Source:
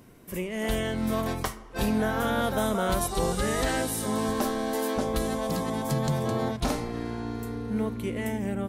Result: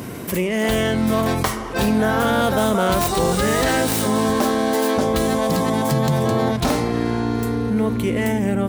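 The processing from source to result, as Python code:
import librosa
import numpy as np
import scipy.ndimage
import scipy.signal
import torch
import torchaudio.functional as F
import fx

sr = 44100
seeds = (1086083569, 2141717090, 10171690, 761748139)

y = fx.tracing_dist(x, sr, depth_ms=0.1)
y = scipy.signal.sosfilt(scipy.signal.butter(2, 69.0, 'highpass', fs=sr, output='sos'), y)
y = fx.env_flatten(y, sr, amount_pct=50)
y = y * 10.0 ** (7.0 / 20.0)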